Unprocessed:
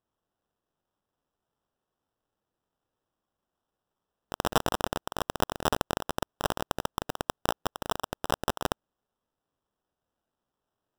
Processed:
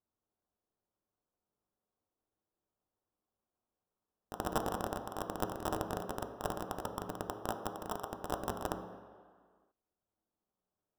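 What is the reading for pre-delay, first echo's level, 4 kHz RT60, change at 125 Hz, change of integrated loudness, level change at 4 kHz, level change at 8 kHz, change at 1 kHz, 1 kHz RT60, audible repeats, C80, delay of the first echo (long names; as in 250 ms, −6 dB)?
3 ms, no echo audible, 1.4 s, −6.0 dB, −7.0 dB, −14.0 dB, −9.5 dB, −7.0 dB, 1.9 s, no echo audible, 9.5 dB, no echo audible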